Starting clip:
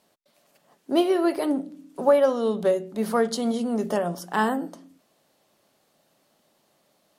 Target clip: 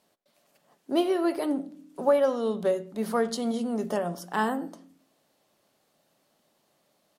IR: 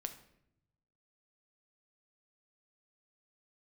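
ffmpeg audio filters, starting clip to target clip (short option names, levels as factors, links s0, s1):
-filter_complex "[0:a]asplit=2[s0][s1];[s1]adelay=90,highpass=300,lowpass=3400,asoftclip=type=hard:threshold=0.158,volume=0.0891[s2];[s0][s2]amix=inputs=2:normalize=0,asplit=2[s3][s4];[1:a]atrim=start_sample=2205[s5];[s4][s5]afir=irnorm=-1:irlink=0,volume=0.251[s6];[s3][s6]amix=inputs=2:normalize=0,volume=0.562"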